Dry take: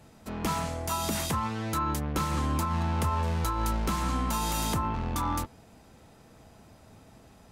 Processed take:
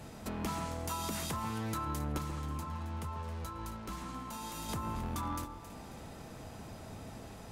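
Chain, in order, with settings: compressor 3:1, threshold -46 dBFS, peak gain reduction 16 dB; 2.18–4.69 flange 2 Hz, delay 7.7 ms, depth 1.8 ms, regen -68%; echo with dull and thin repeats by turns 0.135 s, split 1300 Hz, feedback 62%, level -8 dB; gain +6 dB

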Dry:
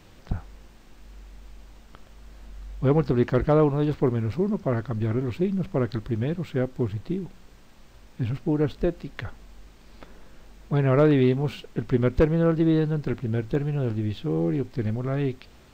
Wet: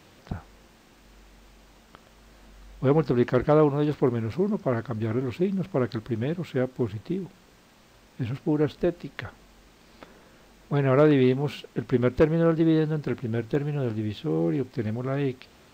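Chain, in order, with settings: HPF 160 Hz 6 dB/oct; gain +1 dB

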